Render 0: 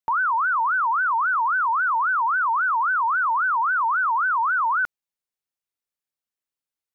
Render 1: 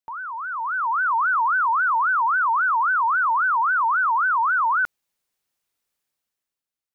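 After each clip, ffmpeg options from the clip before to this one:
-af "alimiter=level_in=1.58:limit=0.0631:level=0:latency=1:release=13,volume=0.631,dynaudnorm=f=120:g=13:m=3.98,volume=0.891"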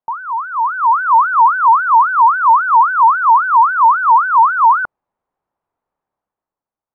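-af "lowpass=f=930:t=q:w=2,volume=2.24"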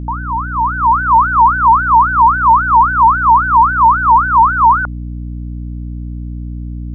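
-af "aeval=exprs='val(0)+0.0708*(sin(2*PI*60*n/s)+sin(2*PI*2*60*n/s)/2+sin(2*PI*3*60*n/s)/3+sin(2*PI*4*60*n/s)/4+sin(2*PI*5*60*n/s)/5)':c=same,volume=1.12"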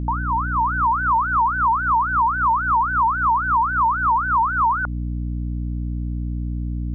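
-af "acompressor=threshold=0.178:ratio=6,volume=0.841"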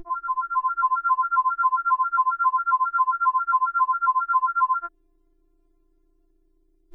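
-af "afftfilt=real='re*4*eq(mod(b,16),0)':imag='im*4*eq(mod(b,16),0)':win_size=2048:overlap=0.75"

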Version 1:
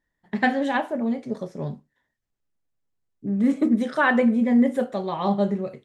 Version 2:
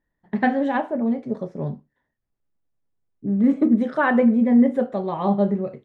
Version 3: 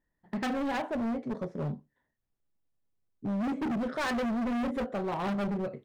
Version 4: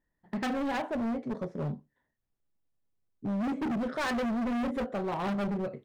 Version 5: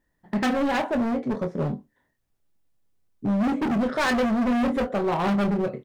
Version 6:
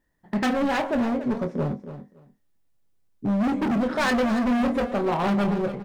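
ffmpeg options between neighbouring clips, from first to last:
-af "lowpass=f=1100:p=1,volume=1.41"
-af "asoftclip=type=hard:threshold=0.0531,volume=0.668"
-af anull
-filter_complex "[0:a]asplit=2[s0][s1];[s1]adelay=24,volume=0.335[s2];[s0][s2]amix=inputs=2:normalize=0,volume=2.37"
-af "aecho=1:1:283|566:0.251|0.0452"

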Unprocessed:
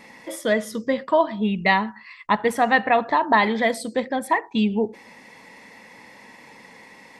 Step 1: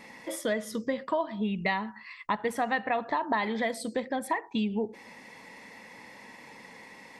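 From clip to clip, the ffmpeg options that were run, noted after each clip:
-af "acompressor=threshold=0.0501:ratio=2.5,volume=0.75"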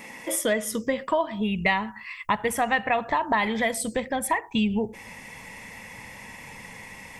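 -af "asubboost=boost=9:cutoff=100,aexciter=amount=1:drive=7:freq=2300,volume=1.88"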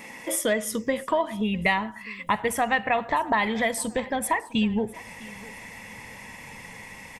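-af "aecho=1:1:654|1308|1962:0.0891|0.0365|0.015"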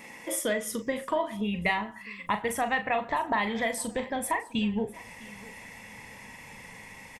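-filter_complex "[0:a]asplit=2[s0][s1];[s1]adelay=39,volume=0.355[s2];[s0][s2]amix=inputs=2:normalize=0,volume=0.596"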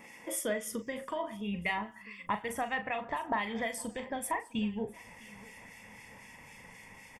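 -filter_complex "[0:a]acrossover=split=1800[s0][s1];[s0]aeval=exprs='val(0)*(1-0.5/2+0.5/2*cos(2*PI*3.9*n/s))':c=same[s2];[s1]aeval=exprs='val(0)*(1-0.5/2-0.5/2*cos(2*PI*3.9*n/s))':c=same[s3];[s2][s3]amix=inputs=2:normalize=0,asuperstop=centerf=4000:order=4:qfactor=7.7,volume=0.668"

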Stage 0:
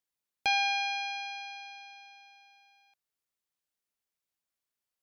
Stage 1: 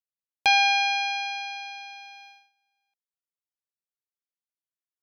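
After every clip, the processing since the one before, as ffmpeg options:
-af "agate=range=0.0794:threshold=0.00158:ratio=16:detection=peak,volume=2.51"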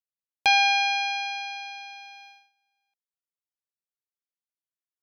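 -af anull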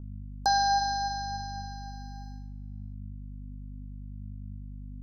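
-af "aeval=exprs='val(0)+0.0126*(sin(2*PI*50*n/s)+sin(2*PI*2*50*n/s)/2+sin(2*PI*3*50*n/s)/3+sin(2*PI*4*50*n/s)/4+sin(2*PI*5*50*n/s)/5)':c=same,flanger=delay=9.5:depth=3.1:regen=81:speed=0.69:shape=triangular,asuperstop=centerf=2600:order=12:qfactor=1,volume=1.5"

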